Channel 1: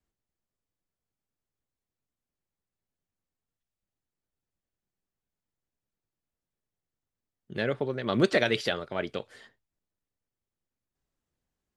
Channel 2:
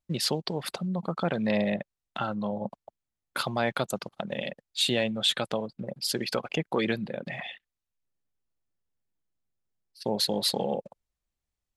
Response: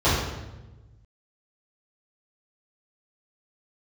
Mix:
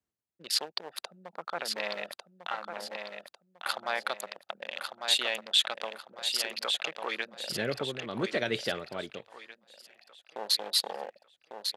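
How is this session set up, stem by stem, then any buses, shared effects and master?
-3.0 dB, 0.00 s, no send, no echo send, tremolo 0.92 Hz, depth 53%
+1.5 dB, 0.30 s, no send, echo send -6 dB, local Wiener filter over 41 samples; high-pass 910 Hz 12 dB/octave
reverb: none
echo: feedback delay 1149 ms, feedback 36%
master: high-pass 91 Hz

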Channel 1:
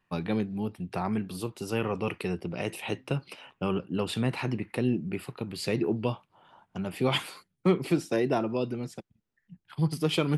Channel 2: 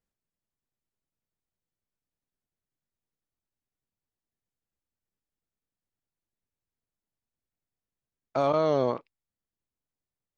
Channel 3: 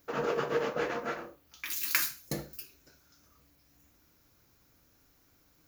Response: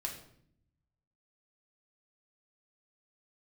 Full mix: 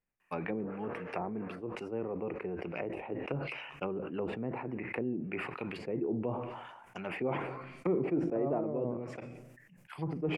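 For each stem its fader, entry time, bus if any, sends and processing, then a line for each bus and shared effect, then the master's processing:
-2.0 dB, 0.20 s, send -18 dB, tone controls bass -15 dB, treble +13 dB
-4.5 dB, 0.00 s, send -8.5 dB, peak limiter -22.5 dBFS, peak gain reduction 8.5 dB
-18.0 dB, 0.45 s, no send, none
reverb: on, RT60 0.65 s, pre-delay 4 ms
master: low-pass that closes with the level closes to 480 Hz, closed at -31 dBFS; resonant high shelf 3 kHz -8 dB, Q 3; decay stretcher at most 41 dB/s

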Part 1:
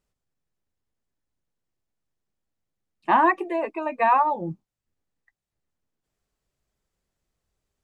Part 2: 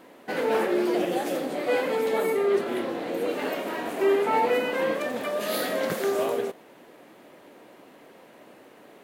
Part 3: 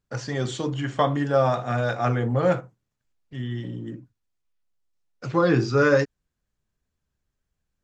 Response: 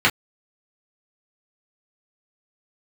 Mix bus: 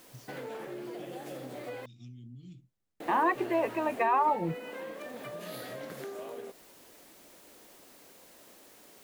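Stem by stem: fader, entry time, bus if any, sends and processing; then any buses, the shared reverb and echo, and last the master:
-2.0 dB, 0.00 s, no bus, no send, peak limiter -16.5 dBFS, peak gain reduction 9 dB
-9.5 dB, 0.00 s, muted 1.86–3.00 s, bus A, no send, word length cut 8-bit, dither triangular
-11.0 dB, 0.00 s, bus A, no send, expander -28 dBFS; elliptic band-stop 280–3000 Hz, stop band 40 dB; compression 6:1, threshold -35 dBFS, peak gain reduction 15.5 dB
bus A: 0.0 dB, compression, threshold -38 dBFS, peak gain reduction 10.5 dB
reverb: none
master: none

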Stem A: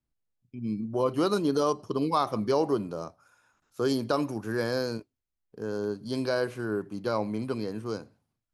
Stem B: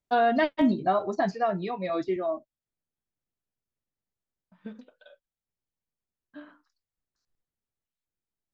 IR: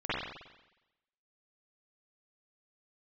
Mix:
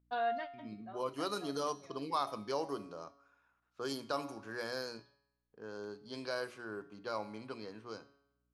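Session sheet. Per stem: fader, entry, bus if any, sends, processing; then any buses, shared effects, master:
+1.5 dB, 0.00 s, no send, hum notches 60/120/180/240/300/360/420 Hz
-2.5 dB, 0.00 s, no send, hum 60 Hz, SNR 22 dB; auto duck -13 dB, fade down 0.25 s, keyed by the first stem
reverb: none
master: bass shelf 480 Hz -12 dB; feedback comb 140 Hz, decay 0.9 s, harmonics all, mix 60%; level-controlled noise filter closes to 2.4 kHz, open at -34 dBFS

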